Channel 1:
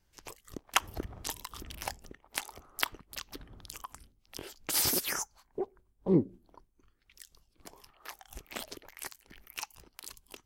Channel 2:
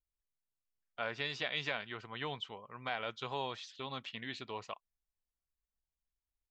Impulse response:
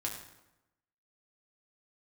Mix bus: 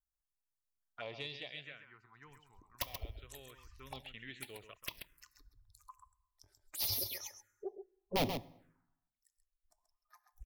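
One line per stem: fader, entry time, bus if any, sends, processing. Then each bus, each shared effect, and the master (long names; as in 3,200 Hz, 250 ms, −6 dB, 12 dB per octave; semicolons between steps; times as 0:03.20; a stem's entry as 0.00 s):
−1.0 dB, 2.05 s, send −11.5 dB, echo send −7.5 dB, spectral dynamics exaggerated over time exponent 2; wrap-around overflow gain 21 dB
0:01.18 −2 dB → 0:01.80 −14 dB → 0:03.24 −14 dB → 0:04.04 −4.5 dB, 0.00 s, no send, echo send −10 dB, no processing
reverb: on, RT60 0.95 s, pre-delay 5 ms
echo: single-tap delay 133 ms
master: parametric band 220 Hz −5.5 dB 0.38 octaves; phaser swept by the level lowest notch 450 Hz, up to 1,500 Hz, full sweep at −38.5 dBFS; soft clipping −25.5 dBFS, distortion −16 dB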